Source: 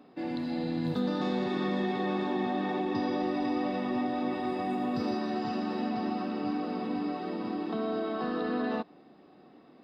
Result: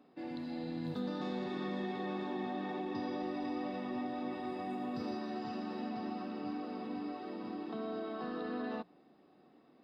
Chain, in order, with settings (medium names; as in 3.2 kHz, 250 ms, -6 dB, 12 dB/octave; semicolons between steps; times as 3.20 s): hum notches 60/120/180 Hz; trim -8 dB